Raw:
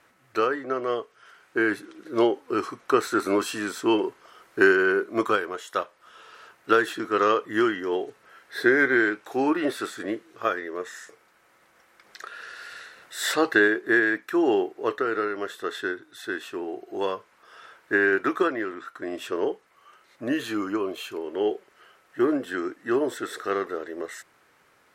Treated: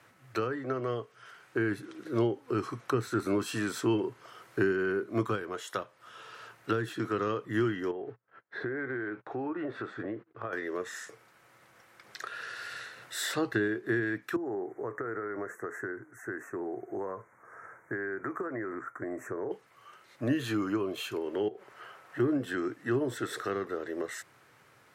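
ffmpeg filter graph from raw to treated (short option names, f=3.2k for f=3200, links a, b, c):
-filter_complex "[0:a]asettb=1/sr,asplit=3[a][b][c];[a]atrim=end=7.914[d];[b]atrim=start=7.91:end=10.53,asetpts=PTS-STARTPTS,afade=t=in:d=0.004:c=qsin,afade=t=out:st=2.616:d=0.004:c=qsin,lowpass=1.6k,acompressor=threshold=-33dB:ratio=4:attack=3.2:release=140:knee=1:detection=peak,agate=range=-30dB:threshold=-53dB:ratio=16:release=100:detection=peak[e];[c]atrim=start=10.526[f];[d][e]acrossfade=d=0.004:c1=hsin:c2=qsin[g];[g][f]acrossfade=d=0.004:c1=qsin:c2=hsin,asettb=1/sr,asplit=3[h][i][j];[h]atrim=end=14.364[k];[i]atrim=start=14.36:end=19.51,asetpts=PTS-STARTPTS,afade=t=in:d=0.004:c=qsin,afade=t=out:st=5.146:d=0.004:c=qsin,highshelf=f=4.2k:g=-8.5,acompressor=threshold=-32dB:ratio=4:attack=3.2:release=140:knee=1:detection=peak,asuperstop=centerf=3700:order=12:qfactor=0.93[l];[j]atrim=start=19.506[m];[k][l]acrossfade=d=0.004:c1=hsin:c2=qsin[n];[n][m]acrossfade=d=0.004:c1=qsin:c2=hsin,asettb=1/sr,asplit=3[o][p][q];[o]atrim=end=21.484[r];[p]atrim=start=21.48:end=22.2,asetpts=PTS-STARTPTS,afade=t=in:d=0.004:c=qsin,afade=t=out:st=0.716:d=0.004:c=qsin,equalizer=f=930:w=0.59:g=8,acompressor=threshold=-35dB:ratio=6:attack=3.2:release=140:knee=1:detection=peak[s];[q]atrim=start=22.196[t];[r][s]acrossfade=d=0.004:c1=hsin:c2=qsin[u];[u][t]acrossfade=d=0.004:c1=qsin:c2=hsin,highpass=55,equalizer=f=120:w=2.5:g=12,acrossover=split=270[v][w];[w]acompressor=threshold=-32dB:ratio=5[x];[v][x]amix=inputs=2:normalize=0"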